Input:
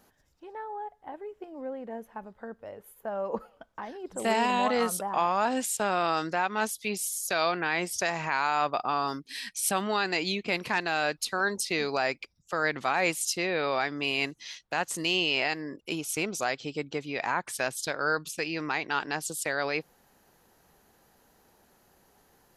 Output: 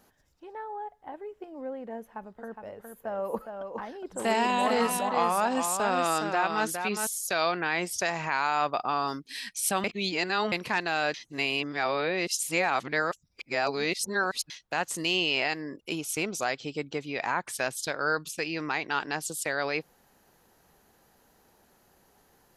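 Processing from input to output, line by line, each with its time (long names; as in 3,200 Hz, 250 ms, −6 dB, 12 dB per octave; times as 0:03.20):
0:01.97–0:07.07: single-tap delay 413 ms −6 dB
0:09.84–0:10.52: reverse
0:11.14–0:14.50: reverse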